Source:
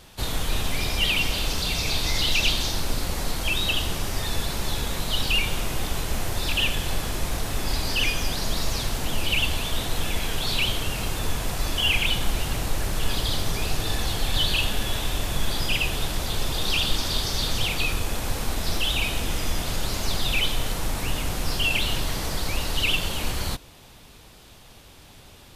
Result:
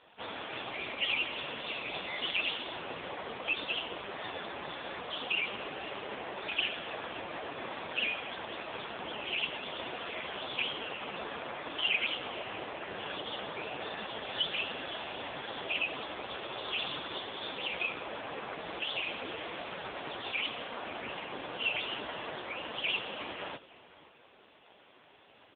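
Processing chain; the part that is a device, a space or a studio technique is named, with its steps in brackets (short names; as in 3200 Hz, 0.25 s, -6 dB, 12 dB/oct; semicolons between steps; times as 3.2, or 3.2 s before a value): 8.15–8.78 HPF 290 Hz -> 68 Hz 6 dB/oct; satellite phone (BPF 340–3200 Hz; echo 0.522 s -19 dB; AMR-NB 5.15 kbps 8000 Hz)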